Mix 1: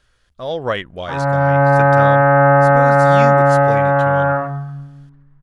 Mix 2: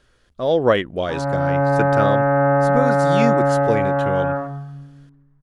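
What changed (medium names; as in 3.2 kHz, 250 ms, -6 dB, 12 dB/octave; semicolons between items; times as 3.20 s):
background -9.5 dB; master: add peaking EQ 320 Hz +9 dB 1.9 oct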